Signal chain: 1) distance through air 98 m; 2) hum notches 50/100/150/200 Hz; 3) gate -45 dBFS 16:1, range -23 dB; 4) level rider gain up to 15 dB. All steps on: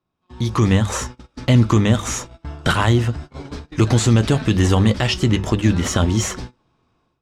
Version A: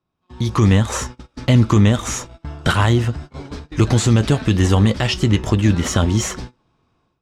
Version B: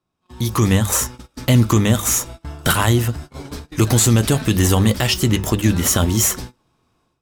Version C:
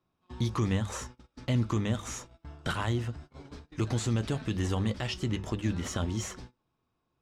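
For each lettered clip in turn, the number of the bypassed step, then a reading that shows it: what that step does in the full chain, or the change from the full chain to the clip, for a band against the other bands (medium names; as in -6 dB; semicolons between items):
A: 2, crest factor change -1.5 dB; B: 1, 8 kHz band +8.5 dB; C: 4, momentary loudness spread change +2 LU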